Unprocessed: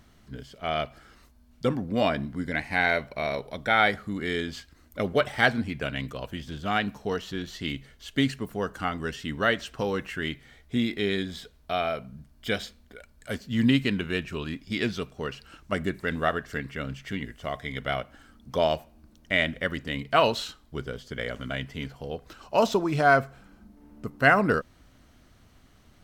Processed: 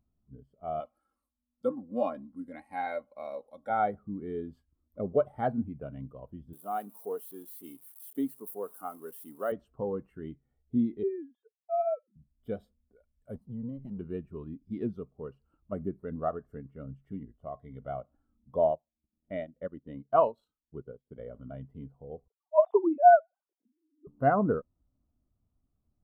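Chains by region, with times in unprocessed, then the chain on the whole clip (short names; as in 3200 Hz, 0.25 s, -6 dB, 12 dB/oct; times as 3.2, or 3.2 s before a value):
0.8–3.7 LPF 11000 Hz + tilt +3 dB/oct + comb 3.7 ms, depth 54%
6.53–9.52 switching spikes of -22.5 dBFS + HPF 310 Hz
11.03–12.16 sine-wave speech + HPF 330 Hz
13.35–13.99 minimum comb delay 1 ms + bell 160 Hz +5 dB 1.3 oct + compressor 4:1, threshold -31 dBFS
18.71–21.18 low shelf 65 Hz -7 dB + transient shaper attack +1 dB, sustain -11 dB
22.28–24.07 sine-wave speech + low-pass opened by the level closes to 430 Hz, open at -18.5 dBFS
whole clip: band shelf 3400 Hz -14.5 dB 2.5 oct; notch 1600 Hz, Q 29; spectral expander 1.5:1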